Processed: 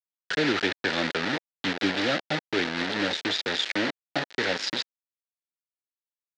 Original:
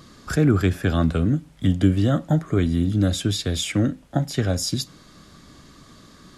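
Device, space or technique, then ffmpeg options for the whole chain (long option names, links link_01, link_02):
hand-held game console: -af "acrusher=bits=3:mix=0:aa=0.000001,highpass=430,equalizer=frequency=680:width_type=q:width=4:gain=-4,equalizer=frequency=1100:width_type=q:width=4:gain=-9,equalizer=frequency=1800:width_type=q:width=4:gain=5,equalizer=frequency=4000:width_type=q:width=4:gain=3,lowpass=frequency=4800:width=0.5412,lowpass=frequency=4800:width=1.3066"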